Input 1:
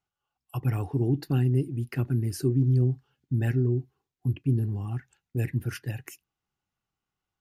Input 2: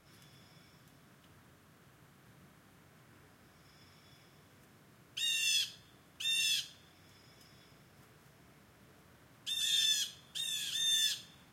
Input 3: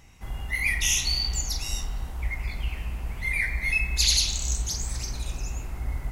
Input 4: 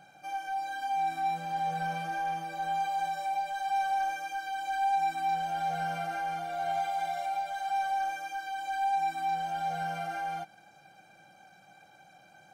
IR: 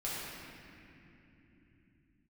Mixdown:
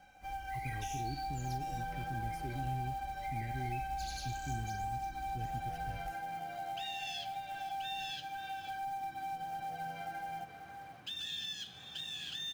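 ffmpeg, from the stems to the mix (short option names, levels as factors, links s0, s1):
-filter_complex "[0:a]alimiter=limit=0.106:level=0:latency=1,volume=0.188[s0];[1:a]lowpass=3700,adelay=1600,volume=1.26,asplit=2[s1][s2];[s2]volume=0.112[s3];[2:a]volume=0.126[s4];[3:a]aecho=1:1:3.9:0.93,acontrast=81,volume=0.158,asplit=2[s5][s6];[s6]volume=0.266[s7];[s3][s7]amix=inputs=2:normalize=0,aecho=0:1:534:1[s8];[s0][s1][s4][s5][s8]amix=inputs=5:normalize=0,acrusher=bits=5:mode=log:mix=0:aa=0.000001,acrossover=split=370[s9][s10];[s10]acompressor=threshold=0.01:ratio=4[s11];[s9][s11]amix=inputs=2:normalize=0"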